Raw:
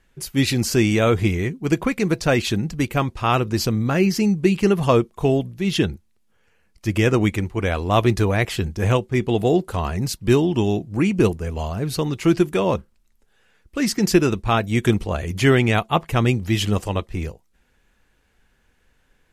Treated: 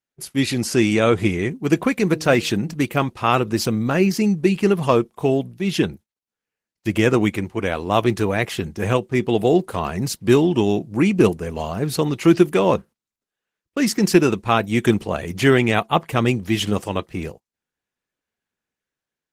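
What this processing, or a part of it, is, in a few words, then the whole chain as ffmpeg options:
video call: -filter_complex "[0:a]asettb=1/sr,asplit=3[link_01][link_02][link_03];[link_01]atrim=end=2.124[link_04];[link_02]atrim=start=2.12:end=2.84,asetpts=PTS-STARTPTS,afade=type=in:duration=0.004:curve=qsin,afade=type=out:start_time=0.716:duration=0.004:curve=qsin,bandreject=frequency=155.4:width_type=h:width=4,bandreject=frequency=310.8:width_type=h:width=4,bandreject=frequency=466.2:width_type=h:width=4[link_05];[link_03]atrim=start=2.836[link_06];[link_04][link_05]acrossfade=duration=0.004:curve1=hsin:curve2=qsin[link_07];[link_07][link_06]acrossfade=duration=0.004:curve1=qsin:curve2=hsin,highpass=140,dynaudnorm=framelen=350:gausssize=5:maxgain=6dB,agate=range=-25dB:threshold=-37dB:ratio=16:detection=peak" -ar 48000 -c:a libopus -b:a 20k

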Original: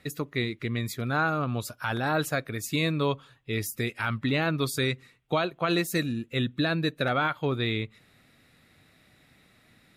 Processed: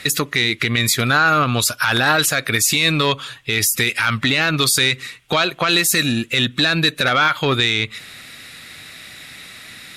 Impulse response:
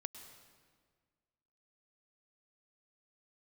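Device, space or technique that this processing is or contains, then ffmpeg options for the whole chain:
mastering chain: -af "equalizer=frequency=810:width_type=o:width=0.77:gain=-2,acompressor=threshold=-29dB:ratio=2,asoftclip=type=tanh:threshold=-21.5dB,tiltshelf=frequency=1100:gain=-8,alimiter=level_in=25dB:limit=-1dB:release=50:level=0:latency=1,lowpass=12000,volume=-5dB"

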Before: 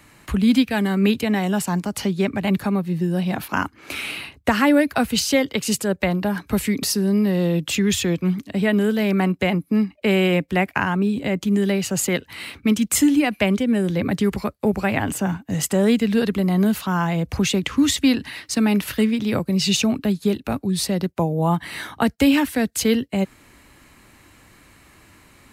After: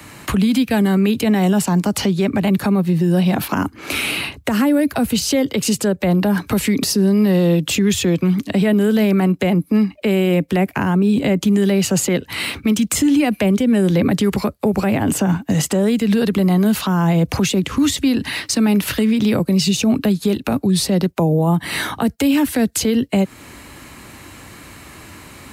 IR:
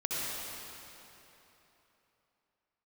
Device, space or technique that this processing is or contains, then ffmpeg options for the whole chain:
mastering chain: -filter_complex "[0:a]highpass=52,equalizer=frequency=1900:width_type=o:width=0.77:gain=-2,acrossover=split=120|580|7600[link_01][link_02][link_03][link_04];[link_01]acompressor=threshold=-41dB:ratio=4[link_05];[link_02]acompressor=threshold=-18dB:ratio=4[link_06];[link_03]acompressor=threshold=-31dB:ratio=4[link_07];[link_04]acompressor=threshold=-37dB:ratio=4[link_08];[link_05][link_06][link_07][link_08]amix=inputs=4:normalize=0,acompressor=threshold=-30dB:ratio=1.5,alimiter=level_in=20dB:limit=-1dB:release=50:level=0:latency=1,volume=-7.5dB"

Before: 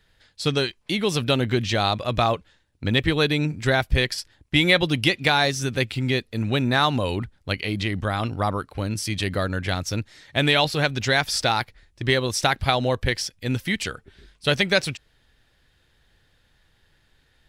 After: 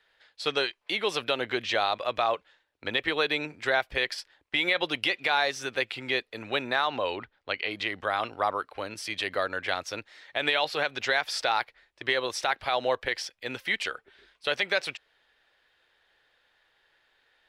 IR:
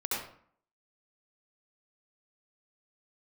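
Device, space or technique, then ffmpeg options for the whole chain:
DJ mixer with the lows and highs turned down: -filter_complex "[0:a]acrossover=split=410 4000:gain=0.0631 1 0.251[link_01][link_02][link_03];[link_01][link_02][link_03]amix=inputs=3:normalize=0,alimiter=limit=-13.5dB:level=0:latency=1:release=86,asettb=1/sr,asplit=3[link_04][link_05][link_06];[link_04]atrim=end=6.874[link_07];[link_05]atrim=start=6.87:end=7.71,asetpts=PTS-STARTPTS,afade=type=in:duration=0.004:curve=qsin,afade=type=out:start_time=0.836:duration=0.004:curve=qsin,lowpass=5400[link_08];[link_06]atrim=start=7.706[link_09];[link_07][link_08]acrossfade=duration=0.004:curve1=hsin:curve2=qsin[link_10];[link_10][link_09]acrossfade=duration=0.004:curve1=qsin:curve2=hsin"

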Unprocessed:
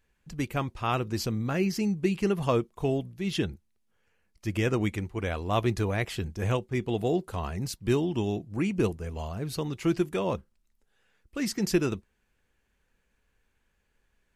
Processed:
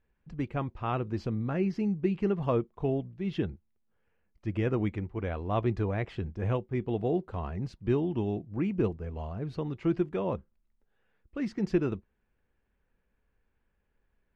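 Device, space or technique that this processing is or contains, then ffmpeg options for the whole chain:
phone in a pocket: -af "lowpass=3600,highshelf=frequency=2000:gain=-11,volume=-1.5dB"

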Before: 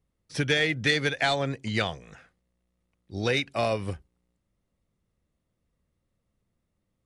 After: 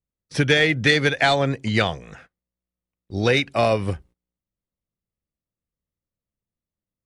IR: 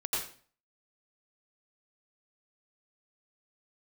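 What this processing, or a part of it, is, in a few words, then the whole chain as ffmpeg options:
behind a face mask: -af "highshelf=frequency=3300:gain=-4,agate=range=-21dB:threshold=-54dB:ratio=16:detection=peak,volume=7.5dB"

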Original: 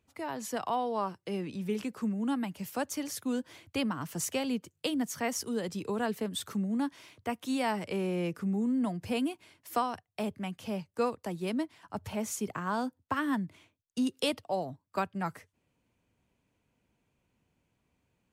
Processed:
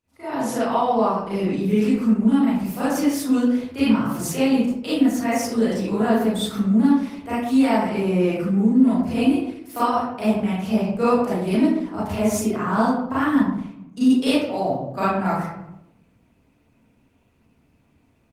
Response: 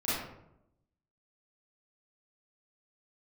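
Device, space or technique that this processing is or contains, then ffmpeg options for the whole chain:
speakerphone in a meeting room: -filter_complex "[0:a]asettb=1/sr,asplit=3[link_01][link_02][link_03];[link_01]atrim=end=9.214[link_04];[link_02]atrim=start=9.21:end=10.67,asetpts=PTS-STARTPTS,afade=type=in:duration=0.004:curve=qsin,afade=type=out:start_time=1.456:duration=0.004:curve=qsin,equalizer=frequency=13000:width=5.6:gain=-3.5[link_05];[link_03]atrim=start=10.666[link_06];[link_04][link_05]acrossfade=duration=0.004:curve1=hsin:curve2=qsin[link_07];[link_07][link_06]acrossfade=duration=0.004:curve1=qsin:curve2=hsin,asettb=1/sr,asplit=3[link_08][link_09][link_10];[link_08]atrim=end=12.024[link_11];[link_09]atrim=start=12.02:end=12.49,asetpts=PTS-STARTPTS,afade=type=in:duration=0.004:curve=qsin,afade=type=out:start_time=0.466:duration=0.004:curve=qsin,aecho=1:1:2.9:0.43,atrim=end_sample=20727[link_12];[link_10]atrim=start=12.486[link_13];[link_11][link_12]acrossfade=duration=0.004:curve1=hsin:curve2=qsin[link_14];[link_14][link_13]acrossfade=duration=0.004:curve1=qsin:curve2=hsin[link_15];[1:a]atrim=start_sample=2205[link_16];[link_15][link_16]afir=irnorm=-1:irlink=0,asplit=2[link_17][link_18];[link_18]adelay=200,highpass=300,lowpass=3400,asoftclip=type=hard:threshold=-16.5dB,volume=-27dB[link_19];[link_17][link_19]amix=inputs=2:normalize=0,dynaudnorm=framelen=230:gausssize=3:maxgain=11.5dB,volume=-5dB" -ar 48000 -c:a libopus -b:a 24k

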